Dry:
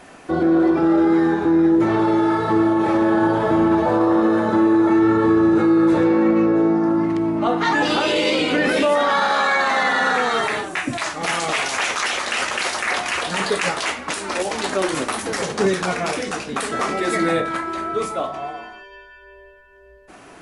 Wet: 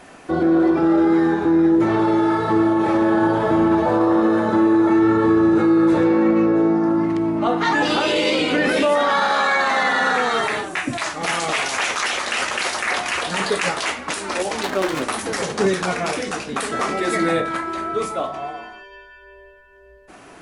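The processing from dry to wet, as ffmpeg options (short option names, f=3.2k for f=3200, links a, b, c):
-filter_complex "[0:a]asettb=1/sr,asplit=3[a][b][c];[a]atrim=end=14.634[d];[b]atrim=start=14.63:end=15.03,asetpts=PTS-STARTPTS,afade=t=in:d=0.004:c=qsin,afade=t=out:st=0.396:d=0.004:c=qsin,adynamicsmooth=sensitivity=6:basefreq=1.1k[e];[c]atrim=start=15.026[f];[d][e]acrossfade=d=0.004:c1=hsin:c2=qsin[g];[g][f]acrossfade=d=0.004:c1=qsin:c2=hsin"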